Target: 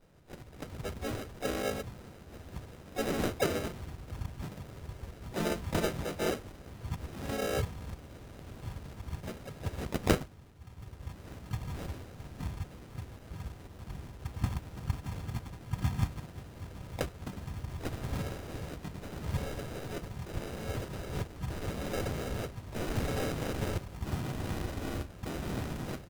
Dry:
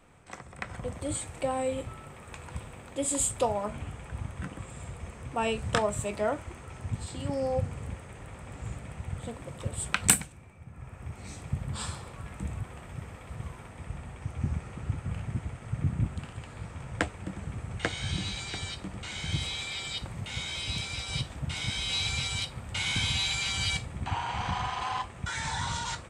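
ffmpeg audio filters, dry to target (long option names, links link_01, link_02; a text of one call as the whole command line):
ffmpeg -i in.wav -filter_complex "[0:a]acrusher=samples=40:mix=1:aa=0.000001,asplit=3[link_01][link_02][link_03];[link_02]asetrate=35002,aresample=44100,atempo=1.25992,volume=0dB[link_04];[link_03]asetrate=58866,aresample=44100,atempo=0.749154,volume=-7dB[link_05];[link_01][link_04][link_05]amix=inputs=3:normalize=0,volume=-6.5dB" out.wav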